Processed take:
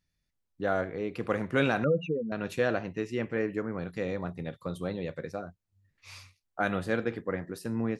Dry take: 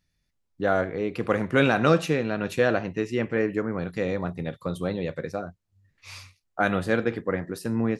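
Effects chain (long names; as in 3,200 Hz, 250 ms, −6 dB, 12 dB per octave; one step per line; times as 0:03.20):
0:01.84–0:02.32: expanding power law on the bin magnitudes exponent 3.8
level −5.5 dB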